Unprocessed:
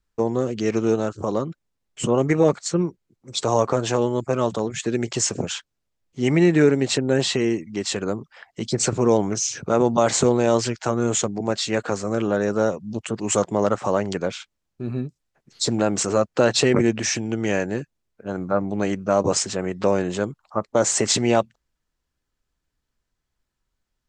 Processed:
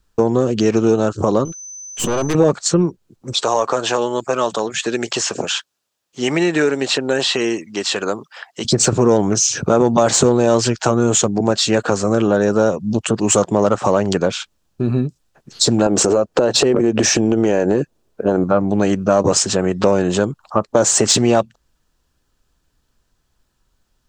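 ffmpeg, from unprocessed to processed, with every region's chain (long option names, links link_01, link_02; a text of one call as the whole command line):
ffmpeg -i in.wav -filter_complex "[0:a]asettb=1/sr,asplit=3[link_01][link_02][link_03];[link_01]atrim=end=1.454[link_04];[link_02]atrim=start=1.45:end=2.35,asetpts=PTS-STARTPTS,afade=type=in:duration=0.004:curve=qsin,afade=type=out:start_time=0.896:duration=0.004:curve=qsin,highpass=frequency=280:poles=1,aeval=exprs='(tanh(25.1*val(0)+0.6)-tanh(0.6))/25.1':channel_layout=same,aeval=exprs='val(0)+0.00631*sin(2*PI*6100*n/s)':channel_layout=same[link_05];[link_03]atrim=start=2.346[link_06];[link_04][link_05]acrossfade=duration=0.004:curve1=hsin:curve2=qsin[link_07];[link_07][link_06]acrossfade=duration=0.004:curve1=qsin:curve2=hsin,asettb=1/sr,asplit=3[link_08][link_09][link_10];[link_08]atrim=end=3.334[link_11];[link_09]atrim=start=3.33:end=8.65,asetpts=PTS-STARTPTS,afade=type=in:duration=0.004:curve=qsin,afade=type=out:start_time=5.316:duration=0.004:curve=qsin,acrossover=split=4100[link_12][link_13];[link_13]acompressor=threshold=-37dB:ratio=4:attack=1:release=60[link_14];[link_12][link_14]amix=inputs=2:normalize=0,highpass=frequency=950:poles=1[link_15];[link_10]atrim=start=8.646[link_16];[link_11][link_15]acrossfade=duration=0.004:curve1=hsin:curve2=qsin[link_17];[link_17][link_16]acrossfade=duration=0.004:curve1=qsin:curve2=hsin,asettb=1/sr,asplit=3[link_18][link_19][link_20];[link_18]atrim=end=15.864[link_21];[link_19]atrim=start=15.86:end=18.44,asetpts=PTS-STARTPTS,afade=type=in:duration=0.004:curve=qsin,afade=type=out:start_time=2.576:duration=0.004:curve=qsin,equalizer=frequency=450:width_type=o:width=1.9:gain=9.5,acompressor=threshold=-17dB:ratio=10:attack=3.2:release=140:knee=1:detection=peak[link_22];[link_20]atrim=start=18.436[link_23];[link_21][link_22]acrossfade=duration=0.004:curve1=hsin:curve2=qsin[link_24];[link_24][link_23]acrossfade=duration=0.004:curve1=qsin:curve2=hsin,acontrast=65,equalizer=frequency=2100:width_type=o:width=0.31:gain=-7.5,acompressor=threshold=-22dB:ratio=2,volume=6.5dB" out.wav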